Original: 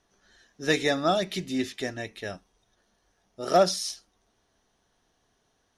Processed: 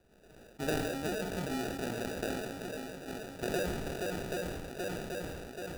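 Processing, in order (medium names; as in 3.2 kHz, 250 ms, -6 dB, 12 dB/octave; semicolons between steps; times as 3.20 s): 2.26–3.43 s: high-pass 960 Hz 24 dB/octave; shuffle delay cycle 780 ms, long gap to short 1.5:1, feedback 51%, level -15.5 dB; compression 8:1, threshold -37 dBFS, peak gain reduction 20.5 dB; sample-and-hold 41×; reverberation, pre-delay 3 ms, DRR 14.5 dB; decay stretcher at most 28 dB/s; trim +3.5 dB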